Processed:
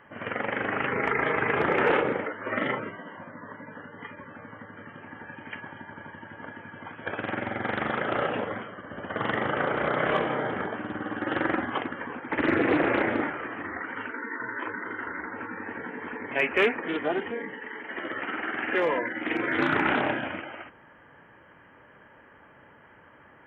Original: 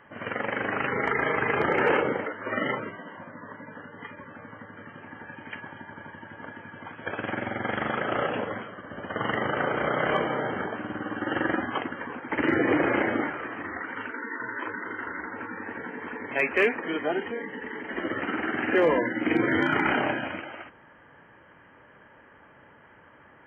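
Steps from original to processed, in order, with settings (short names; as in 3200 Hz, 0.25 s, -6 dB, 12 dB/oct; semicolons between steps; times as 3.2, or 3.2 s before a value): 17.54–19.59 low shelf 380 Hz -11 dB; Doppler distortion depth 0.26 ms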